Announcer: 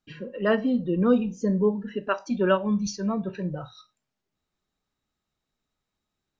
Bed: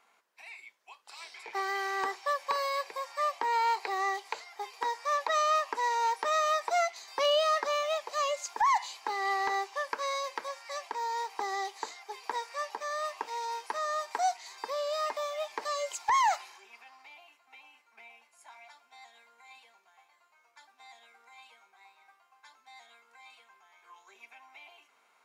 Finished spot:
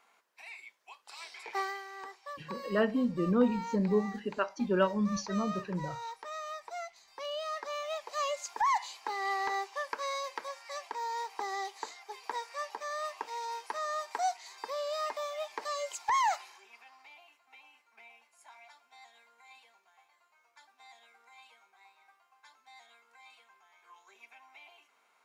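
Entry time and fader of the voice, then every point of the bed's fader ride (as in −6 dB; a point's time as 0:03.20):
2.30 s, −5.5 dB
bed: 0:01.61 0 dB
0:01.85 −13 dB
0:07.22 −13 dB
0:08.23 −2.5 dB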